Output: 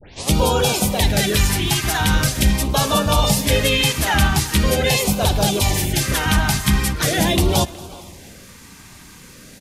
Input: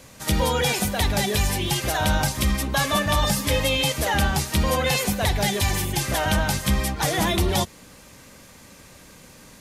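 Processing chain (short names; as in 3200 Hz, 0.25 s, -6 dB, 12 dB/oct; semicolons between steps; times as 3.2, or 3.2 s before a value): tape start at the beginning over 0.31 s; on a send: feedback echo 0.23 s, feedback 58%, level -21.5 dB; on the sum: harmoniser -4 st -9 dB; LFO notch sine 0.42 Hz 510–2000 Hz; speakerphone echo 0.37 s, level -19 dB; gain +5 dB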